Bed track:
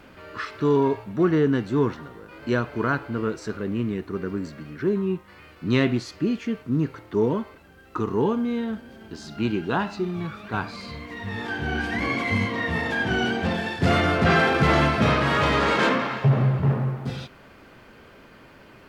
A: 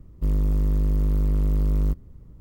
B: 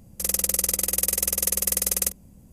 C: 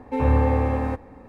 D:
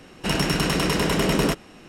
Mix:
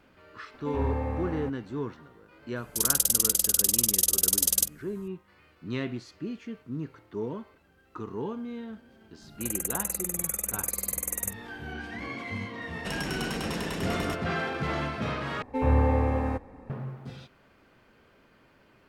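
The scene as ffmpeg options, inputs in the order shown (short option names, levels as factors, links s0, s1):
-filter_complex "[3:a]asplit=2[s0][s1];[2:a]asplit=2[s2][s3];[0:a]volume=0.266[s4];[s2]highshelf=f=2700:t=q:w=3:g=6.5[s5];[s3]asuperstop=centerf=4000:order=12:qfactor=1.1[s6];[4:a]acompressor=threshold=0.0447:ratio=3:attack=26:release=71:knee=1:detection=peak[s7];[s4]asplit=2[s8][s9];[s8]atrim=end=15.424[s10];[s1]atrim=end=1.28,asetpts=PTS-STARTPTS,volume=0.668[s11];[s9]atrim=start=16.696[s12];[s0]atrim=end=1.28,asetpts=PTS-STARTPTS,volume=0.299,afade=t=in:d=0.004:c=hsin,afade=t=out:st=1.276:d=0.004:c=hsin,adelay=540[s13];[s5]atrim=end=2.52,asetpts=PTS-STARTPTS,volume=0.447,afade=t=in:d=0.004:c=hsin,afade=t=out:st=2.516:d=0.004:c=hsin,adelay=2560[s14];[s6]atrim=end=2.52,asetpts=PTS-STARTPTS,volume=0.422,afade=t=in:d=0.004:c=hsin,afade=t=out:st=2.516:d=0.004:c=hsin,adelay=9210[s15];[s7]atrim=end=1.88,asetpts=PTS-STARTPTS,volume=0.398,afade=t=in:d=0.004:c=hsin,afade=t=out:st=1.876:d=0.004:c=hsin,adelay=12610[s16];[s10][s11]acrossfade=d=0.004:c1=hsin:c2=hsin[s17];[s17][s12]acrossfade=d=0.004:c1=hsin:c2=hsin[s18];[s18][s13][s14][s15][s16]amix=inputs=5:normalize=0"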